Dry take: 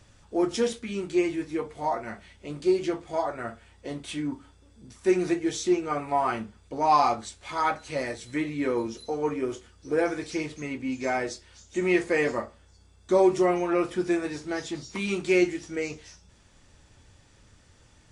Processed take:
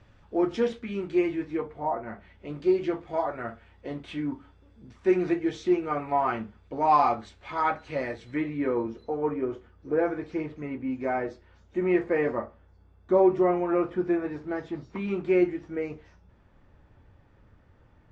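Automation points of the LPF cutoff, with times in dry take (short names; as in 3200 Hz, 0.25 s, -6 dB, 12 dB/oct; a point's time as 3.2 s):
1.54 s 2600 Hz
1.9 s 1100 Hz
2.51 s 2600 Hz
8.19 s 2600 Hz
8.92 s 1500 Hz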